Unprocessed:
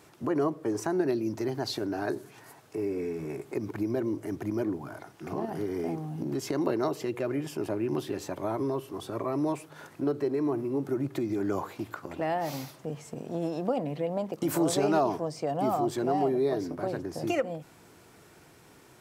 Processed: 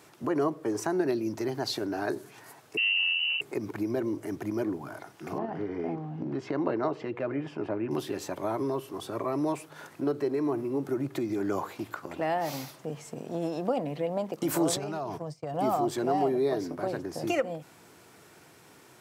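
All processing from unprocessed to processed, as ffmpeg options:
ffmpeg -i in.wav -filter_complex "[0:a]asettb=1/sr,asplit=3[link_01][link_02][link_03];[link_01]atrim=end=2.774[link_04];[link_02]atrim=start=2.77:end=3.41,asetpts=PTS-STARTPTS,afade=type=in:duration=0.004:curve=qsin,afade=type=out:start_time=0.636:duration=0.004:curve=qsin,asoftclip=type=hard:threshold=-29dB,tiltshelf=frequency=700:gain=8,lowpass=frequency=2600:width_type=q:width=0.5098,lowpass=frequency=2600:width_type=q:width=0.6013,lowpass=frequency=2600:width_type=q:width=0.9,lowpass=frequency=2600:width_type=q:width=2.563,afreqshift=-3100[link_05];[link_03]atrim=start=3.406[link_06];[link_04][link_05]acrossfade=duration=0.004:curve1=hsin:curve2=qsin[link_07];[link_07][link_06]acrossfade=duration=0.004:curve1=qsin:curve2=hsin,asettb=1/sr,asplit=3[link_08][link_09][link_10];[link_08]atrim=end=5.384[link_11];[link_09]atrim=start=5.38:end=7.91,asetpts=PTS-STARTPTS,afade=type=in:duration=0.004:curve=qsin,afade=type=out:start_time=2.526:duration=0.004:curve=qsin,lowpass=2400,bandreject=frequency=380:width=12[link_12];[link_10]atrim=start=7.906[link_13];[link_11][link_12]acrossfade=duration=0.004:curve1=hsin:curve2=qsin[link_14];[link_14][link_13]acrossfade=duration=0.004:curve1=qsin:curve2=hsin,asettb=1/sr,asplit=3[link_15][link_16][link_17];[link_15]atrim=end=14.764[link_18];[link_16]atrim=start=14.76:end=15.54,asetpts=PTS-STARTPTS,afade=type=in:duration=0.004:curve=qsin,afade=type=out:start_time=0.776:duration=0.004:curve=qsin,agate=range=-33dB:threshold=-32dB:ratio=3:release=100:detection=peak,lowshelf=frequency=190:width_type=q:width=1.5:gain=6.5,acompressor=threshold=-30dB:ratio=10:attack=3.2:release=140:knee=1:detection=peak[link_19];[link_17]atrim=start=15.536[link_20];[link_18][link_19]acrossfade=duration=0.004:curve1=hsin:curve2=qsin[link_21];[link_21][link_20]acrossfade=duration=0.004:curve1=qsin:curve2=hsin,highpass=86,lowshelf=frequency=470:gain=-3.5,volume=2dB" out.wav

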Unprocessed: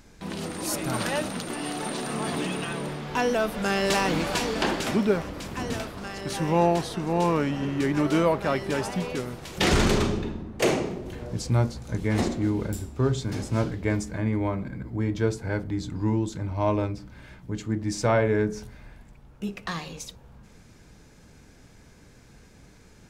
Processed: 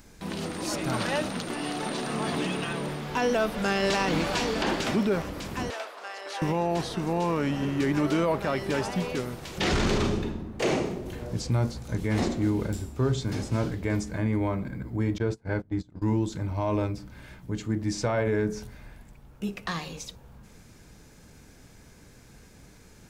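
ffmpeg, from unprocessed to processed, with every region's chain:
ffmpeg -i in.wav -filter_complex "[0:a]asettb=1/sr,asplit=3[link_01][link_02][link_03];[link_01]atrim=end=5.704[link_04];[link_02]atrim=start=5.7:end=6.42,asetpts=PTS-STARTPTS,afade=type=in:duration=0.004:curve=qsin,afade=type=out:start_time=0.716:duration=0.004:curve=qsin,highpass=frequency=520:width=0.5412,highpass=frequency=520:width=1.3066,aemphasis=mode=reproduction:type=50fm[link_05];[link_03]atrim=start=6.416[link_06];[link_04][link_05]acrossfade=duration=0.004:curve1=hsin:curve2=qsin[link_07];[link_07][link_06]acrossfade=duration=0.004:curve1=qsin:curve2=hsin,asettb=1/sr,asplit=3[link_08][link_09][link_10];[link_08]atrim=end=15.184[link_11];[link_09]atrim=start=15.18:end=16.02,asetpts=PTS-STARTPTS,afade=type=in:duration=0.004:curve=qsin,afade=type=out:start_time=0.836:duration=0.004:curve=qsin,agate=range=-23dB:threshold=-31dB:ratio=16:release=100:detection=peak,aemphasis=mode=reproduction:type=50kf[link_12];[link_10]atrim=start=16.016[link_13];[link_11][link_12]acrossfade=duration=0.004:curve1=hsin:curve2=qsin[link_14];[link_14][link_13]acrossfade=duration=0.004:curve1=qsin:curve2=hsin,acrossover=split=6800[link_15][link_16];[link_16]acompressor=threshold=-57dB:ratio=4:attack=1:release=60[link_17];[link_15][link_17]amix=inputs=2:normalize=0,highshelf=frequency=11000:gain=11,alimiter=limit=-16.5dB:level=0:latency=1:release=23" out.wav

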